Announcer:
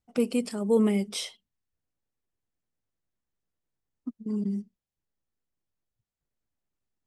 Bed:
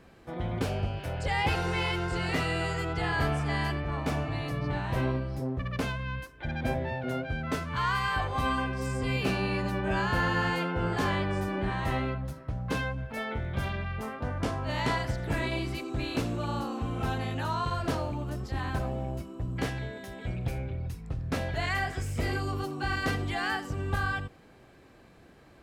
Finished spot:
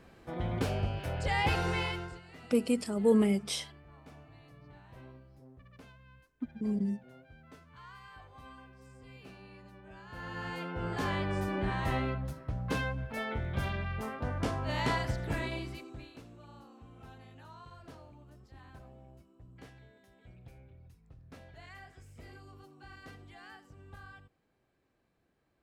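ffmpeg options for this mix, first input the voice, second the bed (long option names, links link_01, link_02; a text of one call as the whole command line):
ffmpeg -i stem1.wav -i stem2.wav -filter_complex "[0:a]adelay=2350,volume=-2dB[link_01];[1:a]volume=19.5dB,afade=type=out:start_time=1.7:duration=0.51:silence=0.0841395,afade=type=in:start_time=10.05:duration=1.45:silence=0.0891251,afade=type=out:start_time=15.1:duration=1.03:silence=0.112202[link_02];[link_01][link_02]amix=inputs=2:normalize=0" out.wav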